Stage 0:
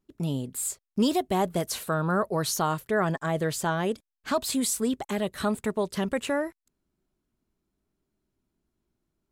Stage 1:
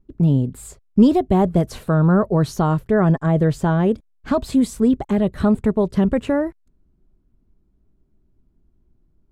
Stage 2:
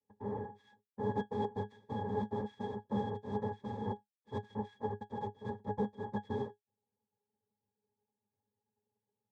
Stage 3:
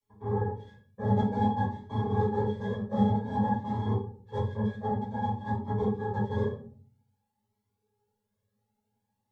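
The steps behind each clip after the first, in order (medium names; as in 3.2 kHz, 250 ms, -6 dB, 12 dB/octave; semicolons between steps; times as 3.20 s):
tilt EQ -4 dB/octave; trim +3.5 dB
static phaser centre 510 Hz, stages 4; noise-vocoded speech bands 2; pitch-class resonator G#, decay 0.12 s; trim -5 dB
simulated room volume 390 m³, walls furnished, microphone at 5.5 m; Shepard-style flanger rising 0.53 Hz; trim +2.5 dB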